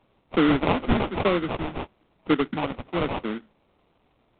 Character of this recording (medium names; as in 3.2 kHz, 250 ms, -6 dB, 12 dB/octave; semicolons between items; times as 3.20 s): phasing stages 2, 1 Hz, lowest notch 370–1400 Hz; aliases and images of a low sample rate 1.7 kHz, jitter 20%; A-law